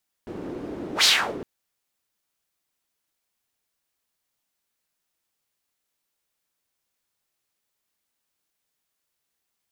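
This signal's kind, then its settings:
pass-by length 1.16 s, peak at 0:00.77, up 0.10 s, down 0.36 s, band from 330 Hz, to 4,500 Hz, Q 2.3, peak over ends 17.5 dB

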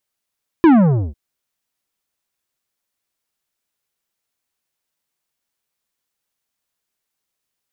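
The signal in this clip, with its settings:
bass drop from 350 Hz, over 0.50 s, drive 11.5 dB, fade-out 0.49 s, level −7 dB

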